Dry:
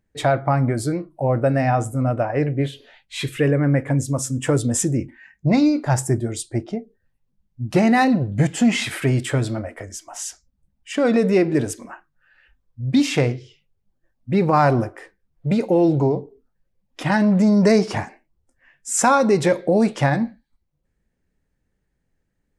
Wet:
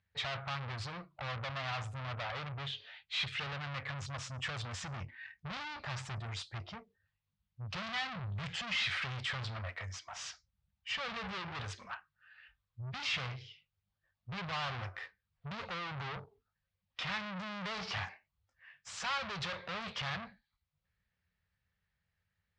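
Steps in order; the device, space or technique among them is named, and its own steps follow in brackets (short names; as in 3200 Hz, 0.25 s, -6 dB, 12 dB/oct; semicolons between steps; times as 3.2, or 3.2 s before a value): scooped metal amplifier (tube stage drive 31 dB, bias 0.5; speaker cabinet 82–4400 Hz, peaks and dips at 93 Hz +8 dB, 180 Hz +5 dB, 1200 Hz +4 dB; passive tone stack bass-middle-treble 10-0-10); gain +4.5 dB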